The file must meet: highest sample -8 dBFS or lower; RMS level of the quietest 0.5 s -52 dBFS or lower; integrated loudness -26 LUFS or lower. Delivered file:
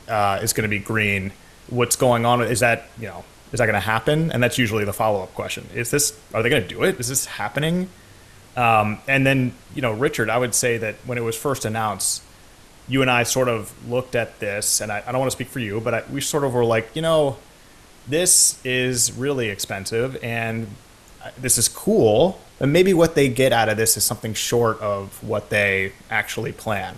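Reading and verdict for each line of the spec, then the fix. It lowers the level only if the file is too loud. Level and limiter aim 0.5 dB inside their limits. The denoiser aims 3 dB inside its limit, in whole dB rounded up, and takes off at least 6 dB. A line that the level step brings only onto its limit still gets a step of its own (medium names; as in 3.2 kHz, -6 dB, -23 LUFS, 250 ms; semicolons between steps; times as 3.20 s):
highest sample -4.0 dBFS: fail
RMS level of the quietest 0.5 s -48 dBFS: fail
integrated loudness -20.5 LUFS: fail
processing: trim -6 dB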